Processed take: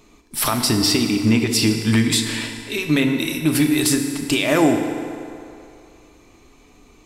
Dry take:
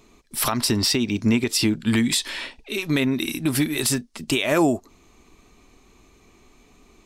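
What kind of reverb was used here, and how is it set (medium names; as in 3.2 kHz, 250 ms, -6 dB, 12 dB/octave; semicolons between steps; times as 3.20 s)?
FDN reverb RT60 2.7 s, low-frequency decay 0.75×, high-frequency decay 0.65×, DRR 4 dB; trim +2 dB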